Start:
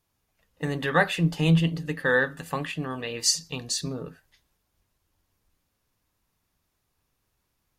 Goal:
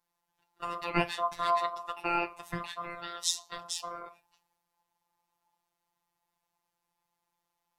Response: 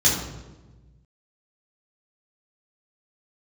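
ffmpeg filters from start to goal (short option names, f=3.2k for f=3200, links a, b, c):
-af "aeval=exprs='val(0)*sin(2*PI*900*n/s)':c=same,afftfilt=real='hypot(re,im)*cos(PI*b)':imag='0':win_size=1024:overlap=0.75,equalizer=f=89:w=1.5:g=13.5,volume=-1.5dB"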